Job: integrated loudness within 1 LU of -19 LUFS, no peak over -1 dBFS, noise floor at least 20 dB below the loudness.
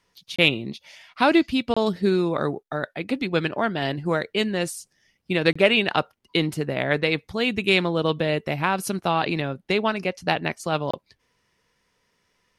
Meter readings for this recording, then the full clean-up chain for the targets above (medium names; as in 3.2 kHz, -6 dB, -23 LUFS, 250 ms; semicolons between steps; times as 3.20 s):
dropouts 4; longest dropout 25 ms; loudness -23.5 LUFS; peak level -3.0 dBFS; loudness target -19.0 LUFS
-> interpolate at 0.36/1.74/5.53/10.91 s, 25 ms; trim +4.5 dB; peak limiter -1 dBFS